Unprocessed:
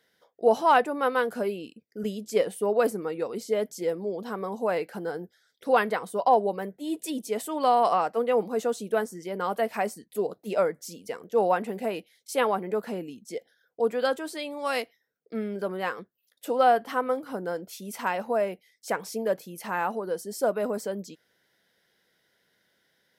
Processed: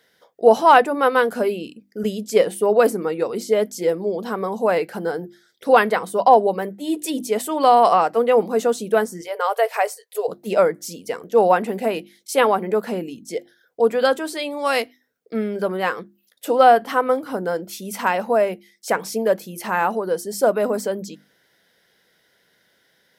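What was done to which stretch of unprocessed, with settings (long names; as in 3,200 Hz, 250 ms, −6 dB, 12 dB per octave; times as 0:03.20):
0:09.21–0:10.28: linear-phase brick-wall high-pass 410 Hz
whole clip: mains-hum notches 50/100/150/200/250/300/350 Hz; level +8 dB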